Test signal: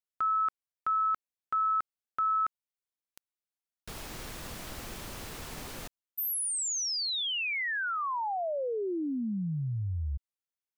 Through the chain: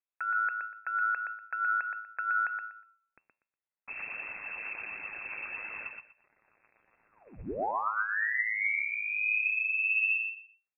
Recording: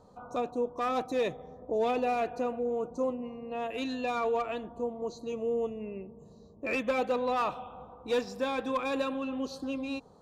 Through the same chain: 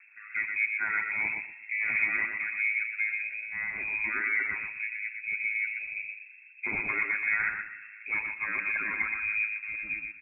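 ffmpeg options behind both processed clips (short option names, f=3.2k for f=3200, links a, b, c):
-filter_complex "[0:a]bandreject=f=186.1:t=h:w=4,bandreject=f=372.2:t=h:w=4,bandreject=f=558.3:t=h:w=4,bandreject=f=744.4:t=h:w=4,bandreject=f=930.5:t=h:w=4,bandreject=f=1.1166k:t=h:w=4,bandreject=f=1.3027k:t=h:w=4,bandreject=f=1.4888k:t=h:w=4,bandreject=f=1.6749k:t=h:w=4,bandreject=f=1.861k:t=h:w=4,bandreject=f=2.0471k:t=h:w=4,bandreject=f=2.2332k:t=h:w=4,bandreject=f=2.4193k:t=h:w=4,bandreject=f=2.6054k:t=h:w=4,bandreject=f=2.7915k:t=h:w=4,bandreject=f=2.9776k:t=h:w=4,bandreject=f=3.1637k:t=h:w=4,bandreject=f=3.3498k:t=h:w=4,bandreject=f=3.5359k:t=h:w=4,bandreject=f=3.722k:t=h:w=4,bandreject=f=3.9081k:t=h:w=4,bandreject=f=4.0942k:t=h:w=4,bandreject=f=4.2803k:t=h:w=4,bandreject=f=4.4664k:t=h:w=4,bandreject=f=4.6525k:t=h:w=4,bandreject=f=4.8386k:t=h:w=4,bandreject=f=5.0247k:t=h:w=4,bandreject=f=5.2108k:t=h:w=4,bandreject=f=5.3969k:t=h:w=4,bandreject=f=5.583k:t=h:w=4,bandreject=f=5.7691k:t=h:w=4,bandreject=f=5.9552k:t=h:w=4,bandreject=f=6.1413k:t=h:w=4,bandreject=f=6.3274k:t=h:w=4,bandreject=f=6.5135k:t=h:w=4,bandreject=f=6.6996k:t=h:w=4,bandreject=f=6.8857k:t=h:w=4,bandreject=f=7.0718k:t=h:w=4,aeval=exprs='val(0)*sin(2*PI*53*n/s)':c=same,aphaser=in_gain=1:out_gain=1:delay=1.7:decay=0.41:speed=1.5:type=triangular,asplit=2[a][b];[b]aecho=0:1:121|242|363:0.562|0.118|0.0248[c];[a][c]amix=inputs=2:normalize=0,lowpass=f=2.3k:t=q:w=0.5098,lowpass=f=2.3k:t=q:w=0.6013,lowpass=f=2.3k:t=q:w=0.9,lowpass=f=2.3k:t=q:w=2.563,afreqshift=-2700,volume=2dB"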